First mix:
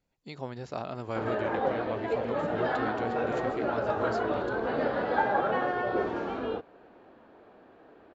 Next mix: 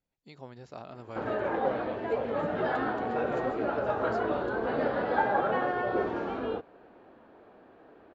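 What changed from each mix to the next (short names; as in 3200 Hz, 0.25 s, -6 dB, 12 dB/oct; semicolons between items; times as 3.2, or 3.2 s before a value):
speech -8.0 dB; background: add high shelf 4800 Hz -6 dB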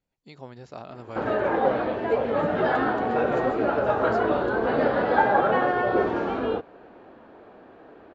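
speech +4.0 dB; background +6.5 dB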